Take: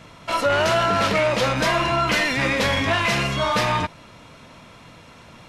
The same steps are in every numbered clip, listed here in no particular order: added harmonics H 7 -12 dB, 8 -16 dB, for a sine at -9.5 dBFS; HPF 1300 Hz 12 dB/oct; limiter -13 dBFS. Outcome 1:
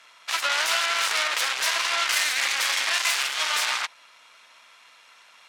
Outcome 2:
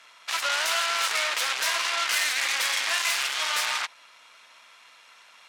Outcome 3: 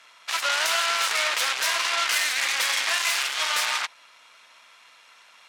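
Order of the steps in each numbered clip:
limiter > added harmonics > HPF; added harmonics > limiter > HPF; added harmonics > HPF > limiter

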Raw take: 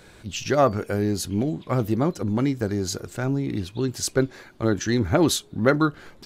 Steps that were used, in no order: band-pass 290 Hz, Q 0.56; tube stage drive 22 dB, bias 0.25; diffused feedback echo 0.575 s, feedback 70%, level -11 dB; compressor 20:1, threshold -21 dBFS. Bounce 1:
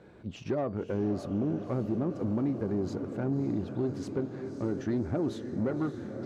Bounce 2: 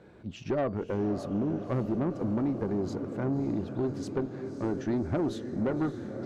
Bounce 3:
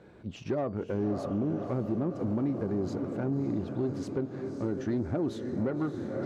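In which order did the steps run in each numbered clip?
compressor > diffused feedback echo > tube stage > band-pass; band-pass > compressor > diffused feedback echo > tube stage; diffused feedback echo > compressor > tube stage > band-pass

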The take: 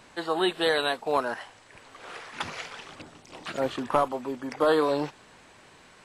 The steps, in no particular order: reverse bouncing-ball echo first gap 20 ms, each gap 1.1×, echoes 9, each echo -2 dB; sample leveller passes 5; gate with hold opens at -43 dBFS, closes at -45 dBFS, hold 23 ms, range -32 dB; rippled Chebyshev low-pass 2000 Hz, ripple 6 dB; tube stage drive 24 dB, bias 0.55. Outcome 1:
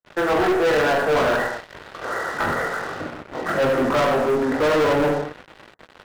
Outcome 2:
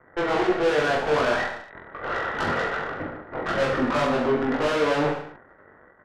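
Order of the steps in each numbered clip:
tube stage > reverse bouncing-ball echo > gate with hold > rippled Chebyshev low-pass > sample leveller; sample leveller > rippled Chebyshev low-pass > gate with hold > tube stage > reverse bouncing-ball echo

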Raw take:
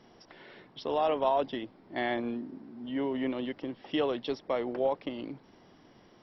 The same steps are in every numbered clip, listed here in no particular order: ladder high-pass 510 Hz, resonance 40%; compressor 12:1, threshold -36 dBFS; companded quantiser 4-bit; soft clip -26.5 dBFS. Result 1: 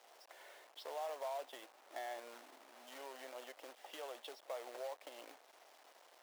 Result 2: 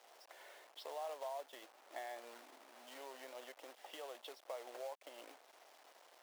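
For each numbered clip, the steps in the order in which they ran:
soft clip > compressor > companded quantiser > ladder high-pass; compressor > companded quantiser > soft clip > ladder high-pass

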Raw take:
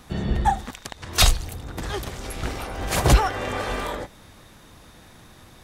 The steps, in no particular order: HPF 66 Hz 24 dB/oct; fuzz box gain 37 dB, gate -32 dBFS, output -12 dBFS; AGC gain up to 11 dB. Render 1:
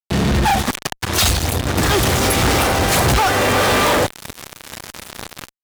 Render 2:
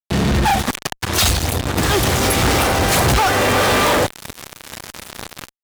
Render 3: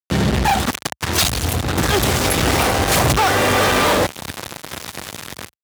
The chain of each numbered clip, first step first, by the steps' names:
HPF > AGC > fuzz box; AGC > HPF > fuzz box; AGC > fuzz box > HPF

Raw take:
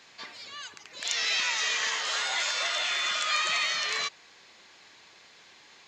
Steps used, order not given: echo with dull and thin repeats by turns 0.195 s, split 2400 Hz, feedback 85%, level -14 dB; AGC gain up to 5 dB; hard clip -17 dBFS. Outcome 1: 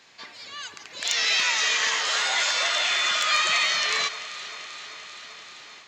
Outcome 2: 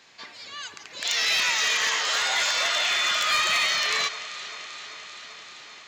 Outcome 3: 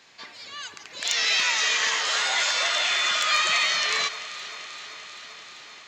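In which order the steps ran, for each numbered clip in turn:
echo with dull and thin repeats by turns > hard clip > AGC; AGC > echo with dull and thin repeats by turns > hard clip; hard clip > AGC > echo with dull and thin repeats by turns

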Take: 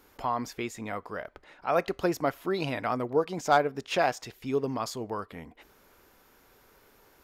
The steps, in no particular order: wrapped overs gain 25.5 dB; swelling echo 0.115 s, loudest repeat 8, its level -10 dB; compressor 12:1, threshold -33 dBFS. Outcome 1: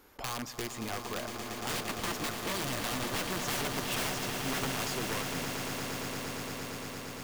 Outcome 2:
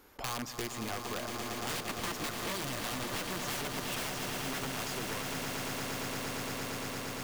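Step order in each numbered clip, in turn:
wrapped overs > compressor > swelling echo; wrapped overs > swelling echo > compressor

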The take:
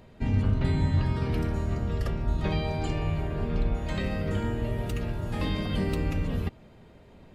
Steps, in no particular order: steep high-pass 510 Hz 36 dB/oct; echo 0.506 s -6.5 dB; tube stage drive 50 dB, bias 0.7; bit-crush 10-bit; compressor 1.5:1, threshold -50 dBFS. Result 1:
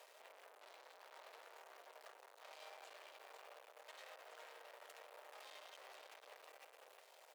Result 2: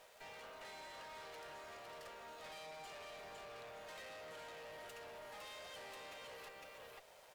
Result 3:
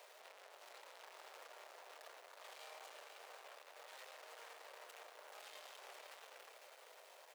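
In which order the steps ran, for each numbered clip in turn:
echo > compressor > bit-crush > tube stage > steep high-pass; echo > bit-crush > steep high-pass > compressor > tube stage; tube stage > compressor > echo > bit-crush > steep high-pass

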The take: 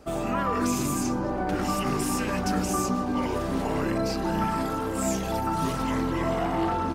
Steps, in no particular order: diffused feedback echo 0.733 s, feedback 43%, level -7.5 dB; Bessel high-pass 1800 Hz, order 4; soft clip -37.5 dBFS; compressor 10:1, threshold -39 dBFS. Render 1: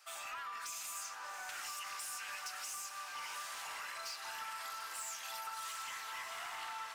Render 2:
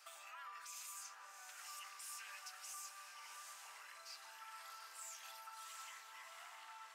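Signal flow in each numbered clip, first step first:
Bessel high-pass > compressor > soft clip > diffused feedback echo; diffused feedback echo > compressor > Bessel high-pass > soft clip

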